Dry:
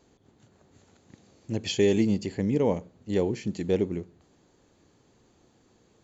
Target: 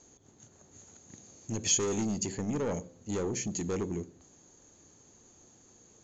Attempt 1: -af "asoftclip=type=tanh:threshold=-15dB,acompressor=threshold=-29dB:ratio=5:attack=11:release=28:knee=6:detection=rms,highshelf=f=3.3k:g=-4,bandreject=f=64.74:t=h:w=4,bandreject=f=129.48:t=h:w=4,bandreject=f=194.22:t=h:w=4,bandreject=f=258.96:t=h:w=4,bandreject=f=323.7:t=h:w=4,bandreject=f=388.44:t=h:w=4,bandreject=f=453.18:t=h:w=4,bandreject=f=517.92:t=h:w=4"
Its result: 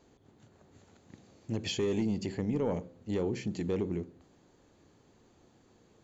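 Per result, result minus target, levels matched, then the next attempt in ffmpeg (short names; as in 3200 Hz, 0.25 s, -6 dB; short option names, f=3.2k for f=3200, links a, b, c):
8000 Hz band -16.5 dB; soft clip: distortion -11 dB
-af "asoftclip=type=tanh:threshold=-15dB,acompressor=threshold=-29dB:ratio=5:attack=11:release=28:knee=6:detection=rms,lowpass=f=6.6k:t=q:w=14,highshelf=f=3.3k:g=-4,bandreject=f=64.74:t=h:w=4,bandreject=f=129.48:t=h:w=4,bandreject=f=194.22:t=h:w=4,bandreject=f=258.96:t=h:w=4,bandreject=f=323.7:t=h:w=4,bandreject=f=388.44:t=h:w=4,bandreject=f=453.18:t=h:w=4,bandreject=f=517.92:t=h:w=4"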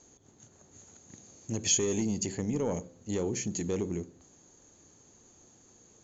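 soft clip: distortion -11 dB
-af "asoftclip=type=tanh:threshold=-25dB,acompressor=threshold=-29dB:ratio=5:attack=11:release=28:knee=6:detection=rms,lowpass=f=6.6k:t=q:w=14,highshelf=f=3.3k:g=-4,bandreject=f=64.74:t=h:w=4,bandreject=f=129.48:t=h:w=4,bandreject=f=194.22:t=h:w=4,bandreject=f=258.96:t=h:w=4,bandreject=f=323.7:t=h:w=4,bandreject=f=388.44:t=h:w=4,bandreject=f=453.18:t=h:w=4,bandreject=f=517.92:t=h:w=4"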